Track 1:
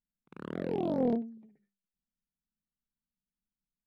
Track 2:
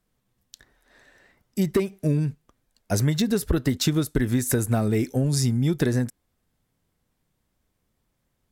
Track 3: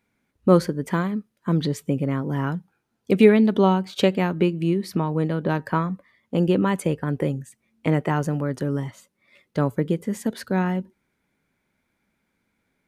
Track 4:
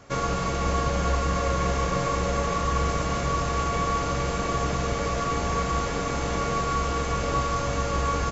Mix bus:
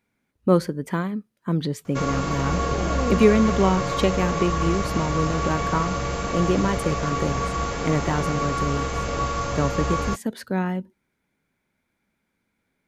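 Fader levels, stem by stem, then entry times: +1.0 dB, muted, −2.0 dB, 0.0 dB; 2.00 s, muted, 0.00 s, 1.85 s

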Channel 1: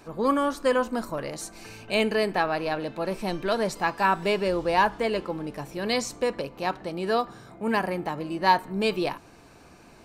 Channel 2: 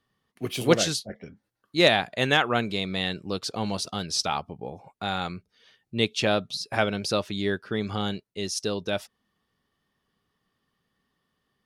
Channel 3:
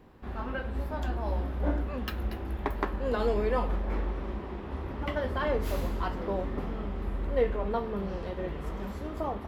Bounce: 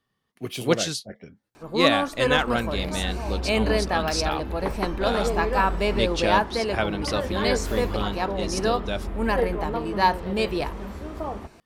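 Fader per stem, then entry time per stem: 0.0, −1.5, +1.5 decibels; 1.55, 0.00, 2.00 seconds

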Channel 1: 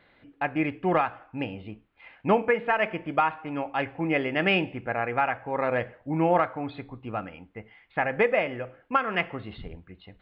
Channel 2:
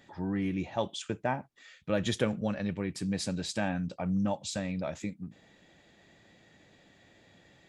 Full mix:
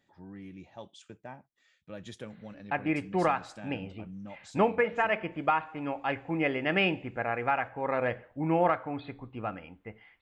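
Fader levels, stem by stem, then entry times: −3.0, −14.0 decibels; 2.30, 0.00 seconds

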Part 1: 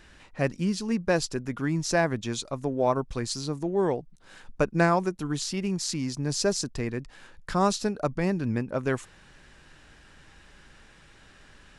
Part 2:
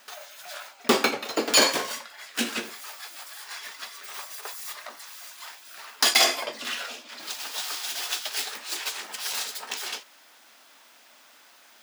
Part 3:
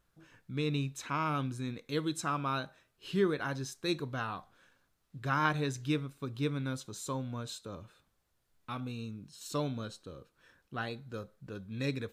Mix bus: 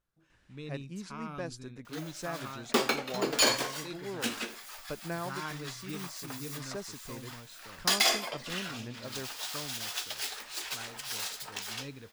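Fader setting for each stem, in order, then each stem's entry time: −15.0, −6.0, −10.5 decibels; 0.30, 1.85, 0.00 seconds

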